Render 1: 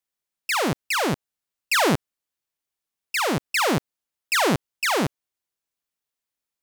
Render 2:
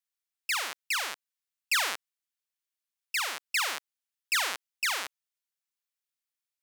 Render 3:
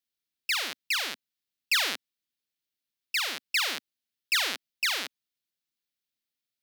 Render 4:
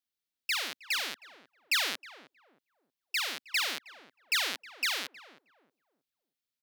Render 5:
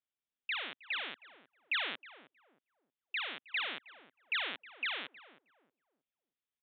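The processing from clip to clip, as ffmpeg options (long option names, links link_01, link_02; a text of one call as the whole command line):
ffmpeg -i in.wav -af "highpass=1400,volume=-4dB" out.wav
ffmpeg -i in.wav -af "equalizer=frequency=125:width_type=o:width=1:gain=4,equalizer=frequency=250:width_type=o:width=1:gain=8,equalizer=frequency=1000:width_type=o:width=1:gain=-7,equalizer=frequency=4000:width_type=o:width=1:gain=5,equalizer=frequency=8000:width_type=o:width=1:gain=-5,volume=1.5dB" out.wav
ffmpeg -i in.wav -filter_complex "[0:a]asplit=2[link_01][link_02];[link_02]adelay=315,lowpass=frequency=800:poles=1,volume=-11.5dB,asplit=2[link_03][link_04];[link_04]adelay=315,lowpass=frequency=800:poles=1,volume=0.35,asplit=2[link_05][link_06];[link_06]adelay=315,lowpass=frequency=800:poles=1,volume=0.35,asplit=2[link_07][link_08];[link_08]adelay=315,lowpass=frequency=800:poles=1,volume=0.35[link_09];[link_01][link_03][link_05][link_07][link_09]amix=inputs=5:normalize=0,volume=-3dB" out.wav
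ffmpeg -i in.wav -af "aresample=8000,aresample=44100,volume=-4dB" out.wav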